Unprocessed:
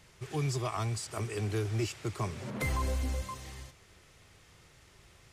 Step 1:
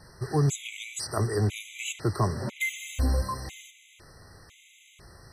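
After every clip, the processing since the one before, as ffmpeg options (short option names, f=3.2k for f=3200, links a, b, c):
-af "afftfilt=real='re*gt(sin(2*PI*1*pts/sr)*(1-2*mod(floor(b*sr/1024/2000),2)),0)':imag='im*gt(sin(2*PI*1*pts/sr)*(1-2*mod(floor(b*sr/1024/2000),2)),0)':win_size=1024:overlap=0.75,volume=9dB"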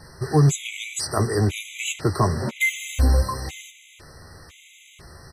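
-filter_complex "[0:a]asplit=2[a][b];[b]adelay=13,volume=-9.5dB[c];[a][c]amix=inputs=2:normalize=0,volume=6dB"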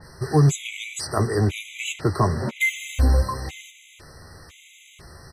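-af "adynamicequalizer=threshold=0.00708:dfrequency=4200:dqfactor=0.7:tfrequency=4200:tqfactor=0.7:attack=5:release=100:ratio=0.375:range=2.5:mode=cutabove:tftype=highshelf"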